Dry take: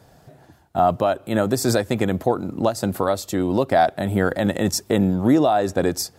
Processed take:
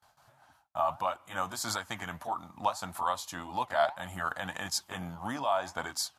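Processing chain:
pitch shift by two crossfaded delay taps −1.5 semitones
flanger 1.7 Hz, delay 2.1 ms, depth 7 ms, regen +80%
noise gate with hold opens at −48 dBFS
low shelf with overshoot 630 Hz −13 dB, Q 3
level −2 dB

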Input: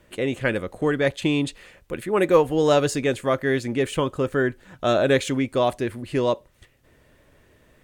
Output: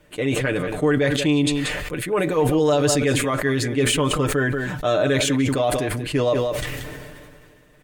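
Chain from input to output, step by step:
single-tap delay 183 ms −15 dB
brickwall limiter −14 dBFS, peak gain reduction 9.5 dB
comb filter 6.7 ms
level that may fall only so fast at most 27 dB per second

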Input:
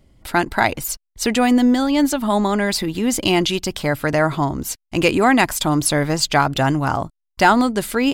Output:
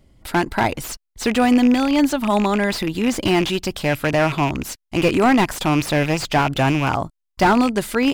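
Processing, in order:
loose part that buzzes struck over −24 dBFS, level −15 dBFS
slew-rate limiting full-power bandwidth 270 Hz

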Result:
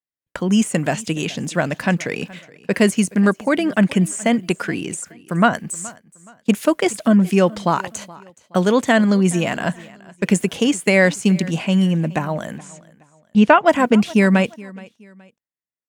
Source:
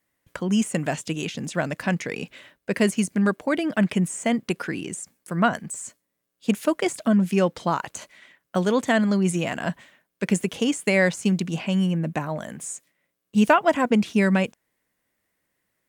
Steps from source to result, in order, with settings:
noise gate −44 dBFS, range −31 dB
0:12.58–0:13.66: low-pass filter 3,800 Hz 12 dB per octave
repeating echo 422 ms, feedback 34%, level −21.5 dB
level +5.5 dB

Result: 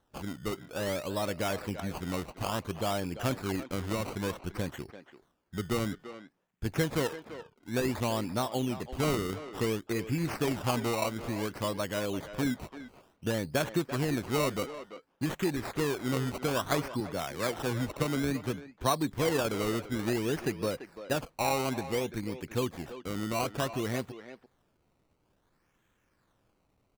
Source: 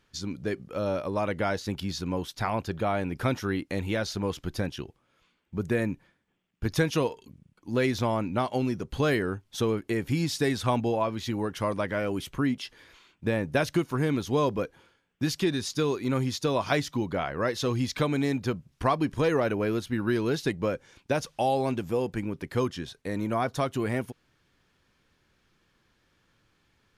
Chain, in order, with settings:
sample-and-hold swept by an LFO 18×, swing 100% 0.57 Hz
far-end echo of a speakerphone 340 ms, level −11 dB
0:17.00–0:19.10: multiband upward and downward expander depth 40%
level −4 dB

